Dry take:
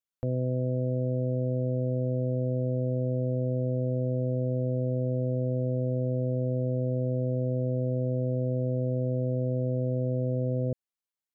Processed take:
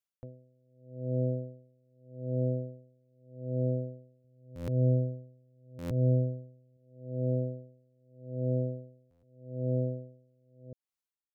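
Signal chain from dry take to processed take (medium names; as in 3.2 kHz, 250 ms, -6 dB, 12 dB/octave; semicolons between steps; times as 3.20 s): 4.24–6.77 s: peaking EQ 78 Hz +7.5 dB 2.3 oct; buffer glitch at 4.55/5.78/9.10 s, samples 512, times 10; logarithmic tremolo 0.82 Hz, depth 40 dB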